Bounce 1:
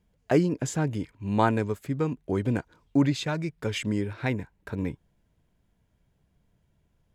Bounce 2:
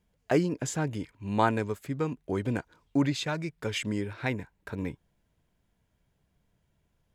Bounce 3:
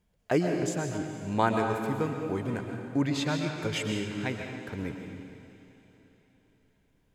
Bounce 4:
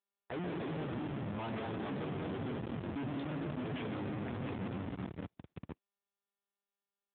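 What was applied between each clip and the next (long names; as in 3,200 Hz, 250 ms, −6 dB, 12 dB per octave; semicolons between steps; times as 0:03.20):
low-shelf EQ 490 Hz −4.5 dB
amplitude tremolo 0.57 Hz, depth 32%; feedback delay with all-pass diffusion 493 ms, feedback 42%, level −15 dB; convolution reverb RT60 1.4 s, pre-delay 85 ms, DRR 3 dB
delay with pitch and tempo change per echo 246 ms, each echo −2 semitones, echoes 2, each echo −6 dB; comparator with hysteresis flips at −31.5 dBFS; level −6.5 dB; AMR narrowband 7.4 kbit/s 8,000 Hz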